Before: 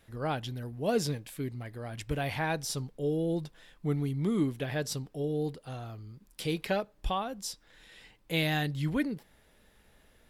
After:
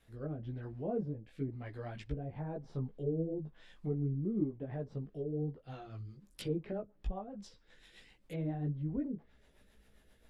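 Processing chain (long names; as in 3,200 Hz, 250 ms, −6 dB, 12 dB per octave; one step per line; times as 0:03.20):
treble cut that deepens with the level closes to 530 Hz, closed at −29 dBFS
multi-voice chorus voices 6, 1.3 Hz, delay 17 ms, depth 3 ms
rotating-speaker cabinet horn 1 Hz, later 7.5 Hz, at 0:05.22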